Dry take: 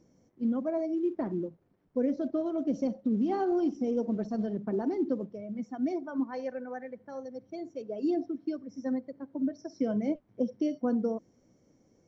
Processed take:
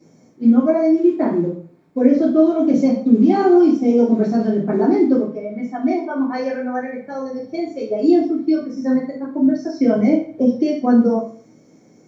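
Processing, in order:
0:05.20–0:06.29: bass and treble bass −10 dB, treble −7 dB
convolution reverb RT60 0.45 s, pre-delay 3 ms, DRR −14 dB
level +2.5 dB

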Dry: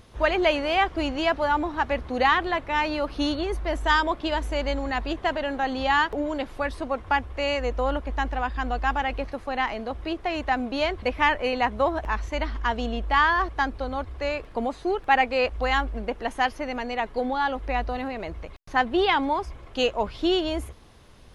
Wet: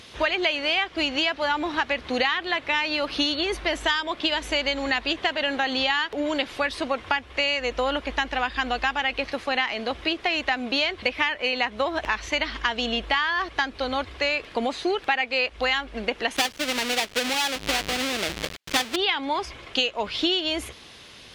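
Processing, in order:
0:16.36–0:18.96: each half-wave held at its own peak
meter weighting curve D
downward compressor 8 to 1, threshold −25 dBFS, peak gain reduction 17.5 dB
level +4.5 dB

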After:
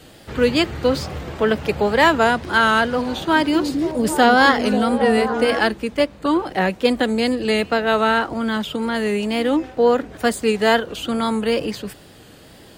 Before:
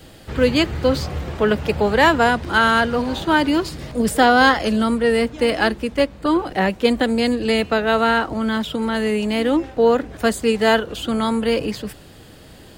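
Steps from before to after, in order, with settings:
0:03.08–0:05.59: echo through a band-pass that steps 270 ms, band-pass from 290 Hz, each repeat 0.7 octaves, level −2.5 dB
tape wow and flutter 61 cents
low-shelf EQ 87 Hz −9 dB

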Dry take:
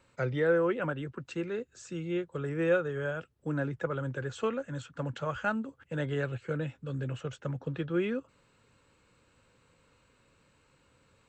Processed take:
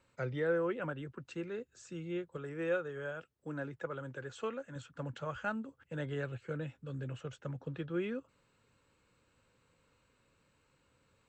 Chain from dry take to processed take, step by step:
0:02.37–0:04.76: low-shelf EQ 180 Hz −8.5 dB
level −6 dB

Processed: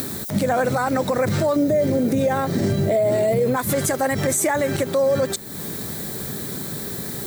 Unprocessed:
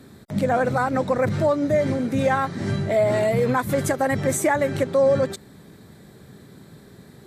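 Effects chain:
0:01.56–0:03.56: low shelf with overshoot 760 Hz +6.5 dB, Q 1.5
downward compressor, threshold −19 dBFS, peak gain reduction 11 dB
background noise violet −56 dBFS
bass and treble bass −3 dB, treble +8 dB
upward compression, threshold −26 dBFS
brickwall limiter −18.5 dBFS, peak gain reduction 10 dB
level +6.5 dB

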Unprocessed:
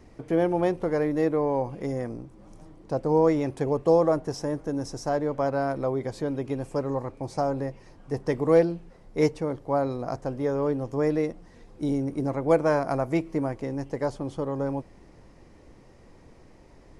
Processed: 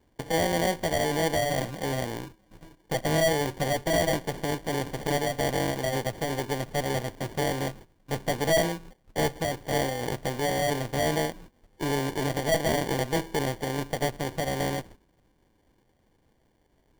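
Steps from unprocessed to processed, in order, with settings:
noise gate −45 dBFS, range −18 dB
in parallel at +0.5 dB: downward compressor, threshold −36 dBFS, peak gain reduction 20 dB
on the sum: formants moved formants +4 semitones
tube saturation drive 20 dB, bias 0.65
sample-rate reduction 1,300 Hz, jitter 0%
level +1 dB

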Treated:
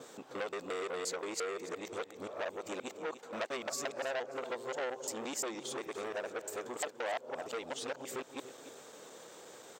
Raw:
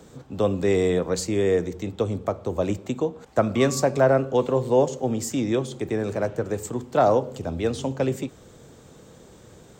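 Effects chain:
reversed piece by piece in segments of 175 ms
high-pass filter 510 Hz 12 dB per octave
downward compressor 3 to 1, threshold −37 dBFS, peak gain reduction 15.5 dB
repeating echo 292 ms, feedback 34%, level −15 dB
saturating transformer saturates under 2,700 Hz
level +1.5 dB

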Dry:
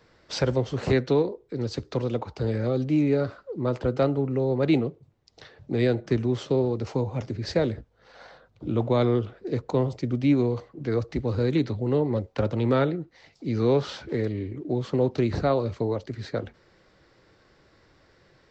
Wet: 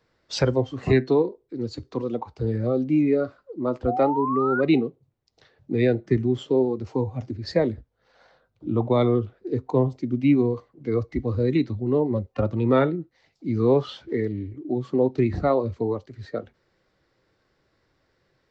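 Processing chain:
noise reduction from a noise print of the clip's start 12 dB
tuned comb filter 130 Hz, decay 0.22 s, harmonics all, mix 30%
sound drawn into the spectrogram rise, 0:03.87–0:04.61, 680–1,500 Hz −32 dBFS
level +5 dB

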